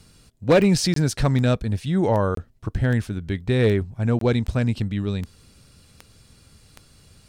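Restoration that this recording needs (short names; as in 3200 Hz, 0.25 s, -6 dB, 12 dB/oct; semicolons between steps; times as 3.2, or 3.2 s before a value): clip repair -10 dBFS; de-click; interpolate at 0.94/2.35/4.19, 23 ms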